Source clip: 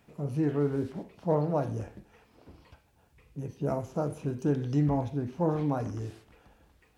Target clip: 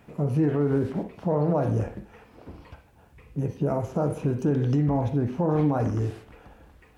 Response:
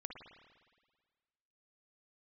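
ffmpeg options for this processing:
-filter_complex "[0:a]alimiter=level_in=1.06:limit=0.0631:level=0:latency=1:release=56,volume=0.944,asplit=2[s0][s1];[1:a]atrim=start_sample=2205,atrim=end_sample=4410,lowpass=3000[s2];[s1][s2]afir=irnorm=-1:irlink=0,volume=1.58[s3];[s0][s3]amix=inputs=2:normalize=0,volume=1.58"

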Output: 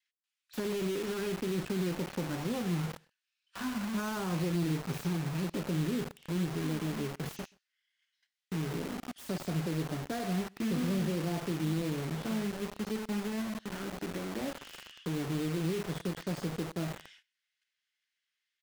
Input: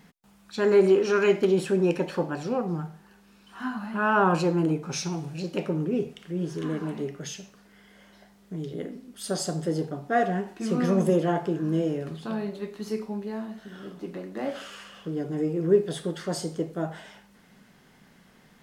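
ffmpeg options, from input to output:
-filter_complex "[0:a]aemphasis=mode=reproduction:type=50fm,agate=range=0.126:threshold=0.00282:ratio=16:detection=peak,adynamicequalizer=threshold=0.0178:dfrequency=270:dqfactor=0.84:tfrequency=270:tqfactor=0.84:attack=5:release=100:ratio=0.375:range=2:mode=boostabove:tftype=bell,asplit=2[s0][s1];[s1]acompressor=threshold=0.0251:ratio=6,volume=1[s2];[s0][s2]amix=inputs=2:normalize=0,alimiter=limit=0.188:level=0:latency=1:release=12,acrossover=split=180[s3][s4];[s4]acompressor=threshold=0.0141:ratio=2.5[s5];[s3][s5]amix=inputs=2:normalize=0,acrossover=split=2100[s6][s7];[s6]acrusher=bits=5:mix=0:aa=0.000001[s8];[s7]aeval=exprs='(mod(94.4*val(0)+1,2)-1)/94.4':c=same[s9];[s8][s9]amix=inputs=2:normalize=0,asplit=2[s10][s11];[s11]adelay=128.3,volume=0.0398,highshelf=f=4000:g=-2.89[s12];[s10][s12]amix=inputs=2:normalize=0,volume=0.631"

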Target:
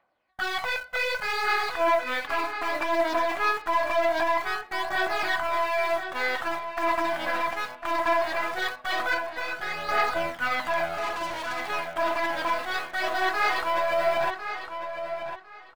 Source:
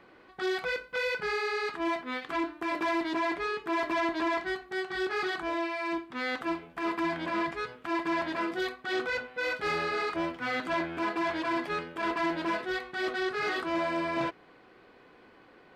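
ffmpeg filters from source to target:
-filter_complex "[0:a]agate=range=0.0891:threshold=0.00316:ratio=16:detection=peak,lowshelf=f=510:t=q:w=3:g=-7.5,asplit=2[s0][s1];[s1]acrusher=bits=4:dc=4:mix=0:aa=0.000001,volume=0.422[s2];[s0][s2]amix=inputs=2:normalize=0,alimiter=limit=0.0794:level=0:latency=1:release=17,aphaser=in_gain=1:out_gain=1:delay=3.9:decay=0.46:speed=0.2:type=triangular,asettb=1/sr,asplit=3[s3][s4][s5];[s3]atrim=end=9.144[s6];[s4]atrim=start=9.14:end=9.89,asetpts=PTS-STARTPTS,afade=t=in:d=0.004:c=qsin,afade=t=out:st=0.746:d=0.004:c=qsin,acompressor=threshold=0.0224:ratio=6[s7];[s5]atrim=start=9.886[s8];[s6][s7]acrossfade=d=0.004:c1=hsin:c2=qsin[s9];[s9][s8]acrossfade=d=0.004:c1=qsin:c2=hsin,asettb=1/sr,asplit=3[s10][s11][s12];[s10]atrim=end=10.944[s13];[s11]atrim=start=10.94:end=11.67,asetpts=PTS-STARTPTS,afade=t=in:d=0.004:c=qsin,afade=t=out:st=0.726:d=0.004:c=qsin,volume=50.1,asoftclip=hard,volume=0.02[s14];[s12]atrim=start=11.666[s15];[s13][s14]acrossfade=d=0.004:c1=hsin:c2=qsin[s16];[s16][s15]acrossfade=d=0.004:c1=qsin:c2=hsin,asplit=2[s17][s18];[s18]adelay=1052,lowpass=f=4700:p=1,volume=0.376,asplit=2[s19][s20];[s20]adelay=1052,lowpass=f=4700:p=1,volume=0.23,asplit=2[s21][s22];[s22]adelay=1052,lowpass=f=4700:p=1,volume=0.23[s23];[s19][s21][s23]amix=inputs=3:normalize=0[s24];[s17][s24]amix=inputs=2:normalize=0,volume=1.41"

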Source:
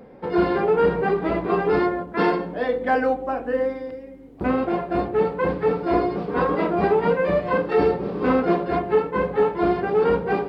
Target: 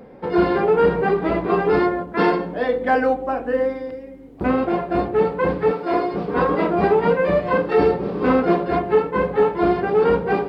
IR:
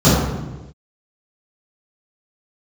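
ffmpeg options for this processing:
-filter_complex "[0:a]asettb=1/sr,asplit=3[s0][s1][s2];[s0]atrim=end=5.714[s3];[s1]atrim=start=5.71:end=6.14,asetpts=PTS-STARTPTS,afade=t=in:d=0.004:c=qsin,afade=t=out:st=0.426:d=0.004:c=qsin,highpass=f=390:p=1[s4];[s2]atrim=start=6.136[s5];[s3][s4]acrossfade=d=0.004:c1=hsin:c2=qsin[s6];[s6][s5]acrossfade=d=0.004:c1=qsin:c2=hsin,volume=1.33"

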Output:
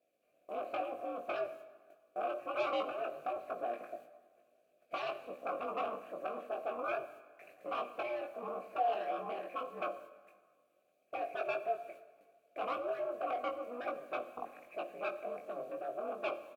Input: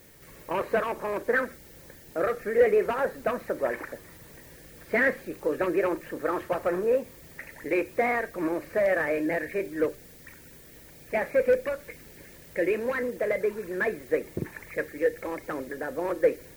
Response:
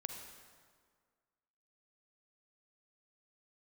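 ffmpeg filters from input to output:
-filter_complex "[0:a]bandreject=f=5200:w=12,agate=range=0.178:threshold=0.00562:ratio=16:detection=peak,firequalizer=gain_entry='entry(240,0);entry(420,10);entry(820,-16);entry(1500,-1);entry(13000,14)':delay=0.05:min_phase=1,aeval=exprs='0.562*(cos(1*acos(clip(val(0)/0.562,-1,1)))-cos(1*PI/2))+0.2*(cos(7*acos(clip(val(0)/0.562,-1,1)))-cos(7*PI/2))':c=same,aeval=exprs='val(0)*sin(2*PI*120*n/s)':c=same,asoftclip=type=tanh:threshold=0.0891,asplit=3[s0][s1][s2];[s0]bandpass=f=730:t=q:w=8,volume=1[s3];[s1]bandpass=f=1090:t=q:w=8,volume=0.501[s4];[s2]bandpass=f=2440:t=q:w=8,volume=0.355[s5];[s3][s4][s5]amix=inputs=3:normalize=0,asplit=2[s6][s7];[s7]adelay=20,volume=0.596[s8];[s6][s8]amix=inputs=2:normalize=0,asplit=2[s9][s10];[1:a]atrim=start_sample=2205,asetrate=48510,aresample=44100[s11];[s10][s11]afir=irnorm=-1:irlink=0,volume=0.794[s12];[s9][s12]amix=inputs=2:normalize=0,volume=0.75"

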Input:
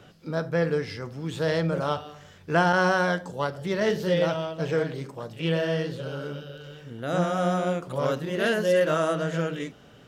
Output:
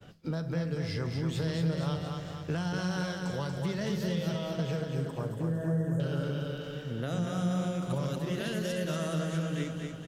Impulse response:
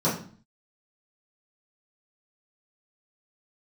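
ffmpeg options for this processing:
-filter_complex "[0:a]acrossover=split=190|3000[s0][s1][s2];[s1]acompressor=threshold=0.02:ratio=6[s3];[s0][s3][s2]amix=inputs=3:normalize=0,asettb=1/sr,asplit=3[s4][s5][s6];[s4]atrim=end=4.814[s7];[s5]atrim=start=4.81:end=6,asetpts=PTS-STARTPTS,afade=t=in:d=0.004:c=qsin,afade=t=out:st=1.186:d=0.004:c=qsin,asuperstop=centerf=3500:order=12:qfactor=0.68[s8];[s6]atrim=start=5.996[s9];[s7][s8]acrossfade=d=0.004:c1=hsin:c2=qsin[s10];[s10][s9]acrossfade=d=0.004:c1=qsin:c2=hsin,acompressor=threshold=0.0251:ratio=6,lowshelf=f=180:g=7.5,agate=range=0.0224:threshold=0.00562:ratio=3:detection=peak,asplit=2[s11][s12];[s12]aecho=0:1:237|474|711|948|1185|1422|1659:0.562|0.315|0.176|0.0988|0.0553|0.031|0.0173[s13];[s11][s13]amix=inputs=2:normalize=0"

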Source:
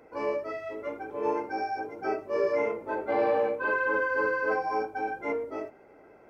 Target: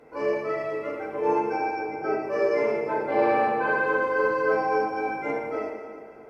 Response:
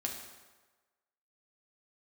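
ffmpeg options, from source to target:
-filter_complex "[0:a]asettb=1/sr,asplit=3[s0][s1][s2];[s0]atrim=end=1.564[s3];[s1]atrim=start=1.56:end=2.22,asetpts=PTS-STARTPTS,afade=t=in:d=0.004:c=qsin,afade=t=out:st=0.656:d=0.004:c=qsin,highshelf=f=3600:g=-7.5[s4];[s2]atrim=start=2.216[s5];[s3][s4]acrossfade=d=0.004:c1=hsin:c2=qsin[s6];[s6][s5]acrossfade=d=0.004:c1=qsin:c2=hsin[s7];[1:a]atrim=start_sample=2205,asetrate=27342,aresample=44100[s8];[s7][s8]afir=irnorm=-1:irlink=0"

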